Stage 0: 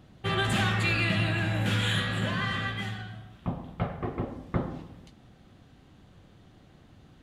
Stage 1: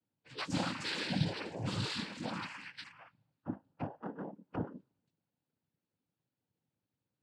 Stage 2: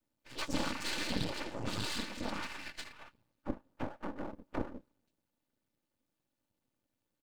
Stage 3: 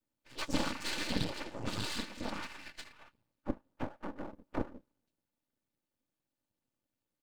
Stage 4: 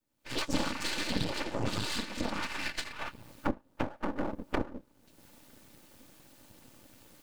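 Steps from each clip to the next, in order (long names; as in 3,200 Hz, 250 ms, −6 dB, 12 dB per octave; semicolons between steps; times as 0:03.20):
noise reduction from a noise print of the clip's start 28 dB; cochlear-implant simulation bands 8; dynamic equaliser 2,100 Hz, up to −8 dB, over −46 dBFS, Q 1.2; level −4 dB
comb filter 3.4 ms, depth 58%; in parallel at −2.5 dB: downward compressor, threshold −43 dBFS, peak gain reduction 14 dB; on the sum: half-wave rectification; level +1.5 dB
expander for the loud parts 1.5 to 1, over −44 dBFS; level +3 dB
camcorder AGC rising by 48 dB per second; level +1.5 dB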